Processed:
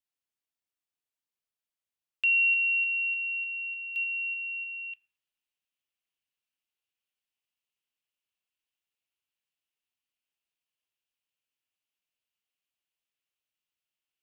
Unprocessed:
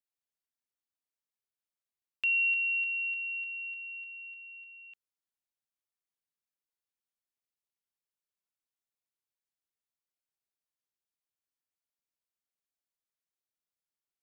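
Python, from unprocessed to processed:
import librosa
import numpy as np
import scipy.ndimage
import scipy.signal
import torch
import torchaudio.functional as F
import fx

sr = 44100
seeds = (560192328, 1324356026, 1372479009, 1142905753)

y = fx.peak_eq(x, sr, hz=2800.0, db=fx.steps((0.0, 5.0), (3.96, 14.0)), octaves=0.64)
y = fx.rev_fdn(y, sr, rt60_s=1.1, lf_ratio=1.05, hf_ratio=0.3, size_ms=62.0, drr_db=11.5)
y = y * librosa.db_to_amplitude(-1.5)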